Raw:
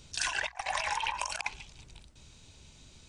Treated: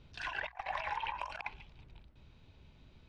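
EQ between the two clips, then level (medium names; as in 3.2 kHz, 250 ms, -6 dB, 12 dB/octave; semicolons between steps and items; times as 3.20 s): distance through air 370 m; -2.5 dB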